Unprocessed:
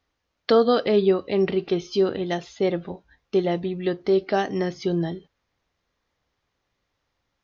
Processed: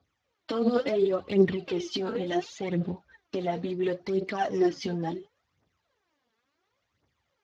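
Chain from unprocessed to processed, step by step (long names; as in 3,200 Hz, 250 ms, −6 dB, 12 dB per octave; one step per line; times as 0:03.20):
brickwall limiter −19.5 dBFS, peak gain reduction 11 dB
phase shifter 0.71 Hz, delay 4.6 ms, feedback 76%
level −2 dB
Speex 15 kbit/s 32,000 Hz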